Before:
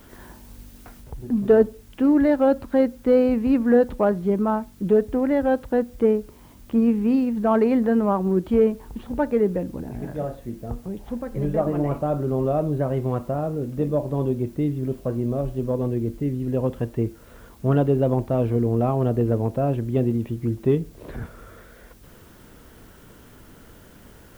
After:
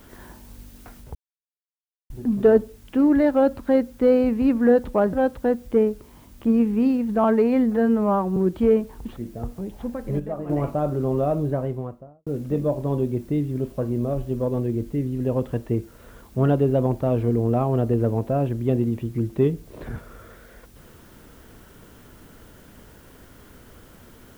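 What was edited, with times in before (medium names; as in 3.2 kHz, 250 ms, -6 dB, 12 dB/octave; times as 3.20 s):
1.15 s: insert silence 0.95 s
4.18–5.41 s: delete
7.52–8.27 s: stretch 1.5×
9.07–10.44 s: delete
11.47–11.77 s: gain -8 dB
12.64–13.54 s: studio fade out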